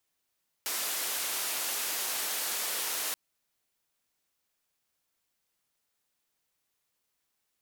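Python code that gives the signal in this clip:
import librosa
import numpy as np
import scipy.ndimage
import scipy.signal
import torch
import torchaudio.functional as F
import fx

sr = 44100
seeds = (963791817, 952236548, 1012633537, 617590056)

y = fx.band_noise(sr, seeds[0], length_s=2.48, low_hz=380.0, high_hz=16000.0, level_db=-33.0)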